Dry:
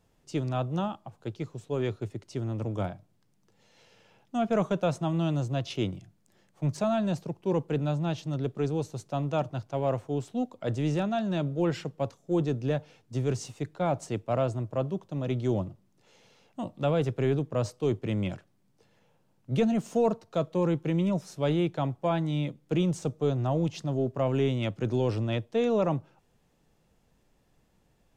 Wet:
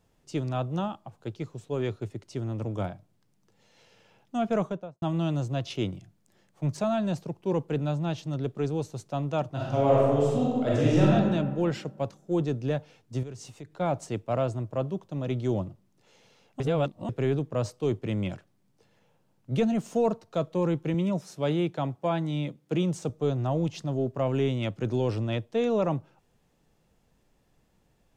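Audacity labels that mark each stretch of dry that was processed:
4.500000	5.020000	studio fade out
9.520000	11.110000	reverb throw, RT60 1.6 s, DRR -6.5 dB
13.230000	13.740000	compressor 2.5:1, threshold -42 dBFS
16.600000	17.090000	reverse
20.940000	23.100000	HPF 110 Hz

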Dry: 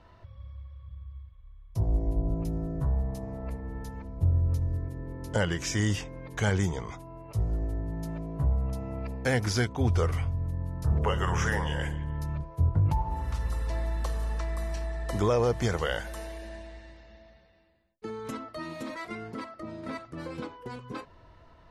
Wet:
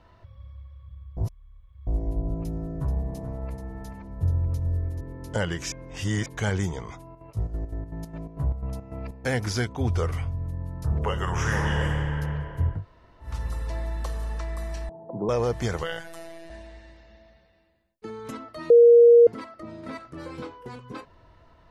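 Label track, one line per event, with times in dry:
1.170000	1.870000	reverse
2.380000	5.010000	echo 0.433 s -8.5 dB
5.720000	6.260000	reverse
7.080000	9.400000	chopper 6.8 Hz -> 2.7 Hz, depth 60%, duty 60%
11.310000	12.160000	reverb throw, RT60 3 s, DRR -1.5 dB
12.770000	13.270000	room tone, crossfade 0.16 s
14.890000	15.290000	Chebyshev band-pass 120–900 Hz, order 4
15.830000	16.500000	robotiser 166 Hz
18.700000	19.270000	bleep 472 Hz -9.5 dBFS
19.980000	20.750000	doubler 22 ms -6 dB

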